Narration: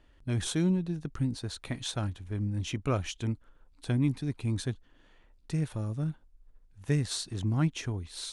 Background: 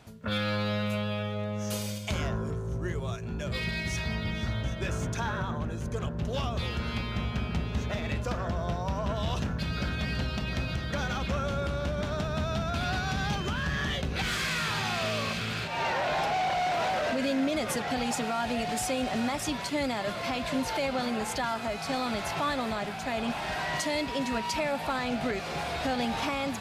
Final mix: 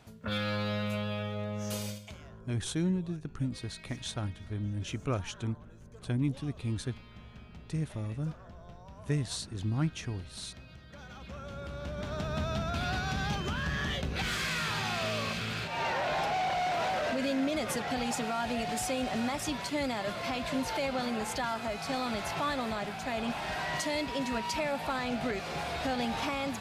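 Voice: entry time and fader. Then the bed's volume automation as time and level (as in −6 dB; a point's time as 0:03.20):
2.20 s, −3.0 dB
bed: 0:01.89 −3 dB
0:02.18 −19 dB
0:10.88 −19 dB
0:12.33 −2.5 dB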